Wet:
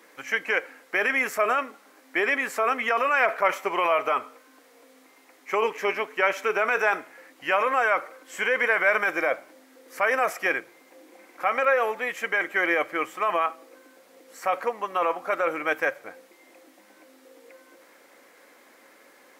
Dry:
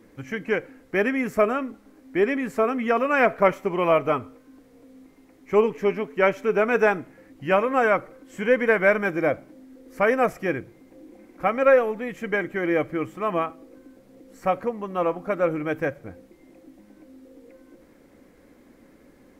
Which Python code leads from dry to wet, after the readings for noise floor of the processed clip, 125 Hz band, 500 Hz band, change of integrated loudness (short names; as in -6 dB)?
-56 dBFS, under -15 dB, -5.5 dB, -1.5 dB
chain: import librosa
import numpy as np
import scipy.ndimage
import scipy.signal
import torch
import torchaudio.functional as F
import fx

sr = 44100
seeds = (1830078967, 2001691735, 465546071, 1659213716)

p1 = scipy.signal.sosfilt(scipy.signal.butter(2, 810.0, 'highpass', fs=sr, output='sos'), x)
p2 = fx.over_compress(p1, sr, threshold_db=-30.0, ratio=-0.5)
y = p1 + (p2 * 10.0 ** (0.0 / 20.0))